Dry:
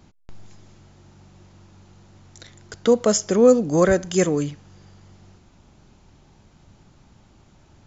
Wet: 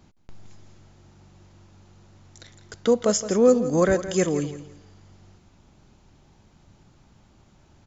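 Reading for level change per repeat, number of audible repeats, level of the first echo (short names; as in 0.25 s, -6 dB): -11.5 dB, 2, -13.0 dB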